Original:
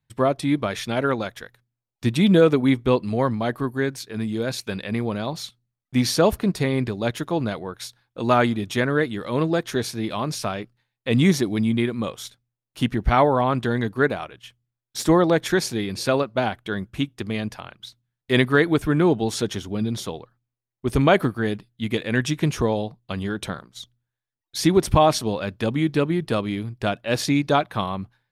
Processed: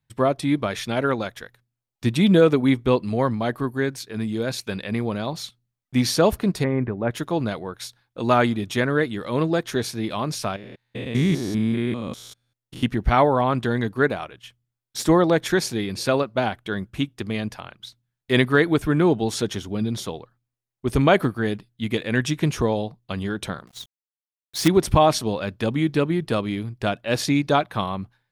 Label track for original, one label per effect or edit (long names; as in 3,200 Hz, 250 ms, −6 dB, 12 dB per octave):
6.640000	7.110000	inverse Chebyshev low-pass filter stop band from 8,000 Hz, stop band 70 dB
10.560000	12.830000	spectrum averaged block by block every 200 ms
23.670000	24.680000	log-companded quantiser 4 bits